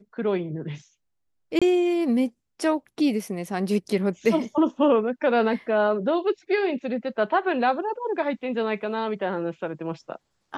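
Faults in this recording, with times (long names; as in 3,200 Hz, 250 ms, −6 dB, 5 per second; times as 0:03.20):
0:01.59–0:01.62: drop-out 26 ms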